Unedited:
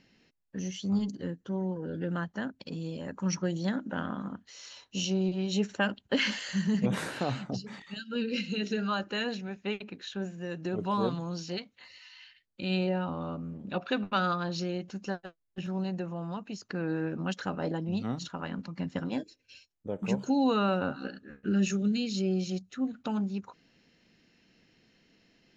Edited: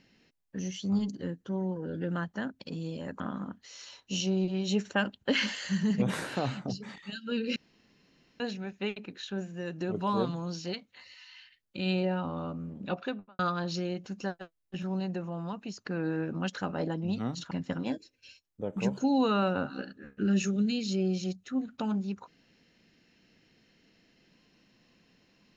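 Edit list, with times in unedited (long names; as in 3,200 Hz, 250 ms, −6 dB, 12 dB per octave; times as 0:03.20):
0:03.20–0:04.04: remove
0:08.40–0:09.24: fill with room tone
0:13.73–0:14.23: fade out and dull
0:18.35–0:18.77: remove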